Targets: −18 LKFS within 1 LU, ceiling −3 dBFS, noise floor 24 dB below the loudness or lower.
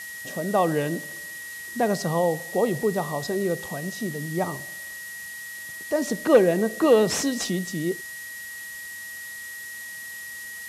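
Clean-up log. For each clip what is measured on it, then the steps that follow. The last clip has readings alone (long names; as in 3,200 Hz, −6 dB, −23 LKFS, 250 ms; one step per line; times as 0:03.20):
interfering tone 1,900 Hz; level of the tone −36 dBFS; background noise floor −38 dBFS; target noise floor −50 dBFS; integrated loudness −26.0 LKFS; sample peak −6.0 dBFS; target loudness −18.0 LKFS
→ notch filter 1,900 Hz, Q 30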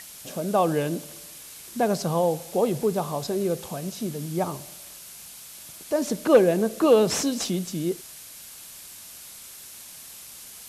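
interfering tone none found; background noise floor −44 dBFS; target noise floor −49 dBFS
→ broadband denoise 6 dB, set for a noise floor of −44 dBFS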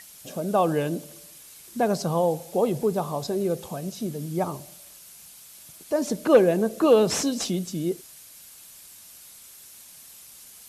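background noise floor −48 dBFS; target noise floor −49 dBFS
→ broadband denoise 6 dB, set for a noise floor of −48 dBFS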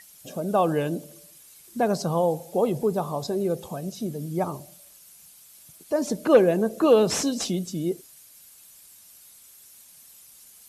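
background noise floor −52 dBFS; integrated loudness −24.5 LKFS; sample peak −6.0 dBFS; target loudness −18.0 LKFS
→ level +6.5 dB
brickwall limiter −3 dBFS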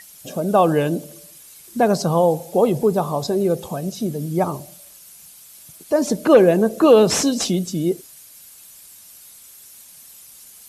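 integrated loudness −18.5 LKFS; sample peak −3.0 dBFS; background noise floor −45 dBFS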